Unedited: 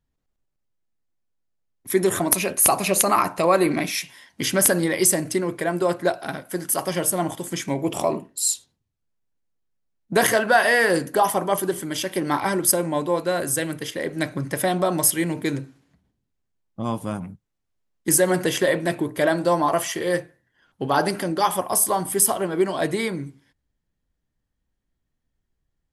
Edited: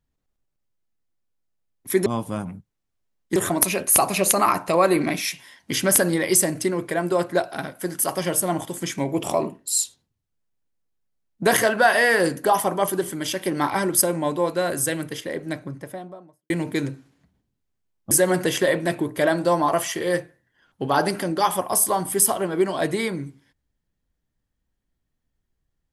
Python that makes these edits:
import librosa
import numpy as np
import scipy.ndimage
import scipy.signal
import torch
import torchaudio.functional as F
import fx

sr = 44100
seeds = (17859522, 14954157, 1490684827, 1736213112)

y = fx.studio_fade_out(x, sr, start_s=13.6, length_s=1.6)
y = fx.edit(y, sr, fx.move(start_s=16.81, length_s=1.3, to_s=2.06), tone=tone)